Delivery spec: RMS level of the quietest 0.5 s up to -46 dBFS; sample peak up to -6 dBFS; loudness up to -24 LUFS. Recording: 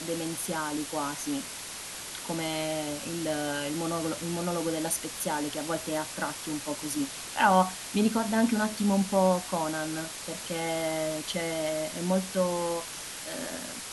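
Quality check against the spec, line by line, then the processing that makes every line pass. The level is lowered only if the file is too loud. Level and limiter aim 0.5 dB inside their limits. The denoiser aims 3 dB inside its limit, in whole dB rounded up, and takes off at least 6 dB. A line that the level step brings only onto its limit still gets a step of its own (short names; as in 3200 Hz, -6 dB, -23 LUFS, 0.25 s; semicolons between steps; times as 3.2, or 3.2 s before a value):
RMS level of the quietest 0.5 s -40 dBFS: fail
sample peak -9.5 dBFS: OK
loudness -30.0 LUFS: OK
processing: denoiser 9 dB, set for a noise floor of -40 dBFS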